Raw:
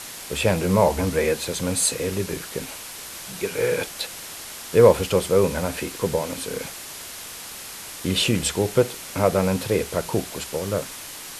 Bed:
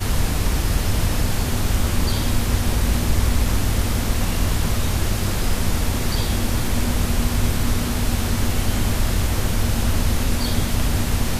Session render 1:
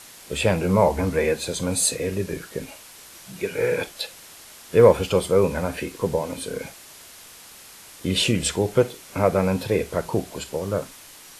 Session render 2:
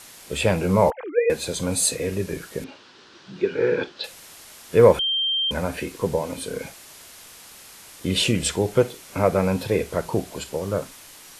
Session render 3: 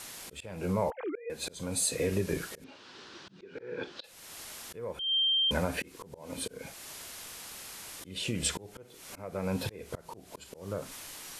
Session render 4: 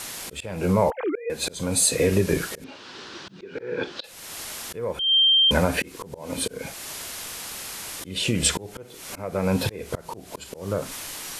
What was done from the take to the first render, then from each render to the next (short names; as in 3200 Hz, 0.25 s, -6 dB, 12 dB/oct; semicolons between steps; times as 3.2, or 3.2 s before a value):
noise print and reduce 8 dB
0.9–1.3 sine-wave speech; 2.64–4.04 speaker cabinet 110–4600 Hz, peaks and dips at 250 Hz +5 dB, 370 Hz +8 dB, 660 Hz -6 dB, 1500 Hz +3 dB, 2200 Hz -7 dB; 4.99–5.51 bleep 3160 Hz -20 dBFS
compressor 8:1, threshold -25 dBFS, peak gain reduction 16.5 dB; auto swell 0.4 s
gain +9.5 dB